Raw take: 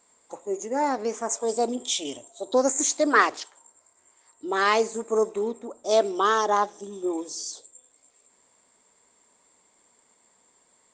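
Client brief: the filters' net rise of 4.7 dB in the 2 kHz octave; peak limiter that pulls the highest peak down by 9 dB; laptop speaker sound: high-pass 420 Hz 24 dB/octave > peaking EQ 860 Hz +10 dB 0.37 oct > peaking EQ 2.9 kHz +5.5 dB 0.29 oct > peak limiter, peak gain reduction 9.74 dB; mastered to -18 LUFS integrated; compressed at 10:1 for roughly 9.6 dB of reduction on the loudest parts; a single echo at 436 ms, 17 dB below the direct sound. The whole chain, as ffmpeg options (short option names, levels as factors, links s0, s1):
-af "equalizer=f=2000:t=o:g=5,acompressor=threshold=0.0891:ratio=10,alimiter=limit=0.0944:level=0:latency=1,highpass=f=420:w=0.5412,highpass=f=420:w=1.3066,equalizer=f=860:t=o:w=0.37:g=10,equalizer=f=2900:t=o:w=0.29:g=5.5,aecho=1:1:436:0.141,volume=5.62,alimiter=limit=0.422:level=0:latency=1"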